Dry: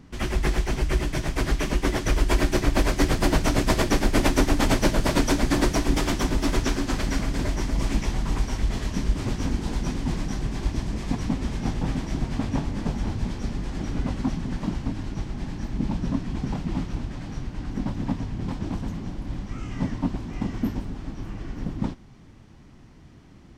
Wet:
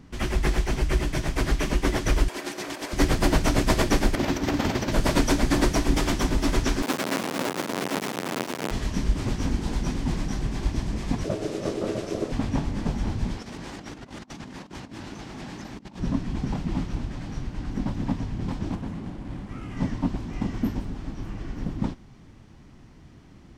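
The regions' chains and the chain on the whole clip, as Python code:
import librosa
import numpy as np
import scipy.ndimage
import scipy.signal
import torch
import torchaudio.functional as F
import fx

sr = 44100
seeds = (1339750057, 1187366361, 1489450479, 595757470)

y = fx.chain(x, sr, fx.highpass(hz=360.0, slope=12),
    fx.over_compress(threshold_db=-35.0, ratio=-1.0), at=(2.28, 2.93))
y = fx.chain(y, sr, fx.highpass(hz=84.0, slope=12),
    fx.peak_eq(hz=9600.0, db=-13.5, octaves=0.68),
    fx.over_compress(threshold_db=-24.0, ratio=-0.5), at=(4.15, 4.92))
y = fx.chain(y, sr, fx.halfwave_hold(),
    fx.bessel_highpass(hz=290.0, order=4),
    fx.doppler_dist(depth_ms=0.17), at=(6.82, 8.71))
y = fx.chain(y, sr, fx.brickwall_lowpass(high_hz=13000.0),
    fx.high_shelf(hz=3800.0, db=6.0),
    fx.ring_mod(carrier_hz=370.0), at=(11.24, 12.32))
y = fx.chain(y, sr, fx.highpass(hz=400.0, slope=6),
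    fx.over_compress(threshold_db=-39.0, ratio=-0.5),
    fx.vibrato_shape(shape='saw_up', rate_hz=4.9, depth_cents=160.0), at=(13.37, 16.0))
y = fx.chain(y, sr, fx.median_filter(points=9),
    fx.lowpass(hz=9400.0, slope=12),
    fx.low_shelf(hz=63.0, db=-10.0), at=(18.75, 19.77))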